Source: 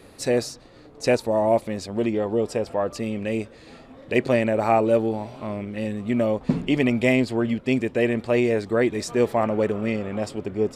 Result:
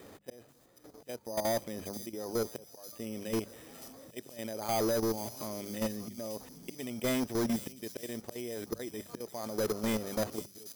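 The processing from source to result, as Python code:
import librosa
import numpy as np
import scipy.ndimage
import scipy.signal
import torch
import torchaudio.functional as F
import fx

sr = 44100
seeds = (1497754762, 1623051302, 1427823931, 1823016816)

p1 = fx.auto_swell(x, sr, attack_ms=737.0)
p2 = fx.rider(p1, sr, range_db=3, speed_s=2.0)
p3 = fx.highpass(p2, sr, hz=110.0, slope=6)
p4 = fx.peak_eq(p3, sr, hz=4400.0, db=-11.5, octaves=0.39)
p5 = fx.level_steps(p4, sr, step_db=13)
p6 = np.clip(10.0 ** (27.0 / 20.0) * p5, -1.0, 1.0) / 10.0 ** (27.0 / 20.0)
p7 = np.repeat(scipy.signal.resample_poly(p6, 1, 8), 8)[:len(p6)]
p8 = fx.high_shelf(p7, sr, hz=8000.0, db=7.0)
p9 = fx.hum_notches(p8, sr, base_hz=50, count=4)
y = p9 + fx.echo_wet_highpass(p9, sr, ms=485, feedback_pct=56, hz=4800.0, wet_db=-5.5, dry=0)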